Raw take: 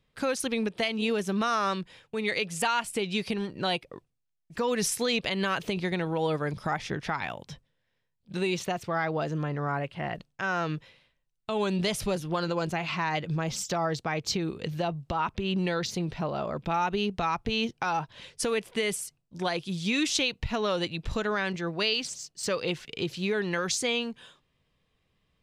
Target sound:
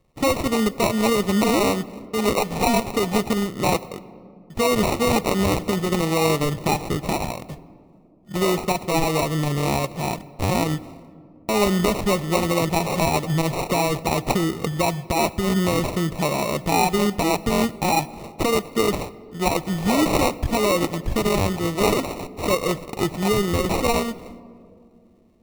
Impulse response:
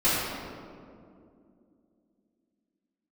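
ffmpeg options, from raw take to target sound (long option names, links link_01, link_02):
-filter_complex "[0:a]acrusher=samples=27:mix=1:aa=0.000001,bandreject=frequency=1500:width=5.3,asplit=2[link_01][link_02];[1:a]atrim=start_sample=2205,highshelf=frequency=11000:gain=10.5[link_03];[link_02][link_03]afir=irnorm=-1:irlink=0,volume=-32dB[link_04];[link_01][link_04]amix=inputs=2:normalize=0,volume=8dB"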